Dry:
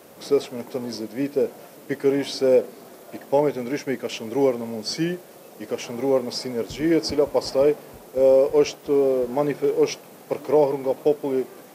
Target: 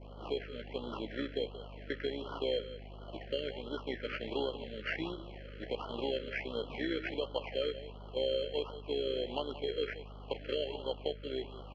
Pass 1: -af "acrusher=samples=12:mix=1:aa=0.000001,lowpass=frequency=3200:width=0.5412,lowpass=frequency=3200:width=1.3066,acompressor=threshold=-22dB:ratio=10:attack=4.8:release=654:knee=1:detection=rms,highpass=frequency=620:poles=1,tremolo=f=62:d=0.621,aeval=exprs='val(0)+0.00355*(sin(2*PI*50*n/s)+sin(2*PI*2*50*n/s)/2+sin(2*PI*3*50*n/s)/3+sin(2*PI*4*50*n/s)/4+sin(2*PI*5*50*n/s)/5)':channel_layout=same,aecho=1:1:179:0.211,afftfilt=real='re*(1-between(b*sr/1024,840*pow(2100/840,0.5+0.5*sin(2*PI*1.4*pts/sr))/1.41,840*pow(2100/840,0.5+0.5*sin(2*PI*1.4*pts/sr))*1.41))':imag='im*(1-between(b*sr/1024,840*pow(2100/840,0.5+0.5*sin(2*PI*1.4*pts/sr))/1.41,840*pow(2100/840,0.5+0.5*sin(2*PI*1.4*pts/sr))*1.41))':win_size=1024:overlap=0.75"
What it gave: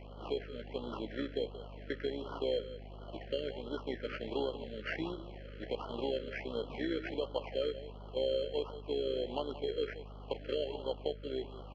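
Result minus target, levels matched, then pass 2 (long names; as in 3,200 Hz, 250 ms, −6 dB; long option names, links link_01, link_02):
2,000 Hz band −3.0 dB
-af "acrusher=samples=12:mix=1:aa=0.000001,lowpass=frequency=3200:width=0.5412,lowpass=frequency=3200:width=1.3066,adynamicequalizer=threshold=0.01:dfrequency=2400:dqfactor=1:tfrequency=2400:tqfactor=1:attack=5:release=100:ratio=0.4:range=3:mode=boostabove:tftype=bell,acompressor=threshold=-22dB:ratio=10:attack=4.8:release=654:knee=1:detection=rms,highpass=frequency=620:poles=1,tremolo=f=62:d=0.621,aeval=exprs='val(0)+0.00355*(sin(2*PI*50*n/s)+sin(2*PI*2*50*n/s)/2+sin(2*PI*3*50*n/s)/3+sin(2*PI*4*50*n/s)/4+sin(2*PI*5*50*n/s)/5)':channel_layout=same,aecho=1:1:179:0.211,afftfilt=real='re*(1-between(b*sr/1024,840*pow(2100/840,0.5+0.5*sin(2*PI*1.4*pts/sr))/1.41,840*pow(2100/840,0.5+0.5*sin(2*PI*1.4*pts/sr))*1.41))':imag='im*(1-between(b*sr/1024,840*pow(2100/840,0.5+0.5*sin(2*PI*1.4*pts/sr))/1.41,840*pow(2100/840,0.5+0.5*sin(2*PI*1.4*pts/sr))*1.41))':win_size=1024:overlap=0.75"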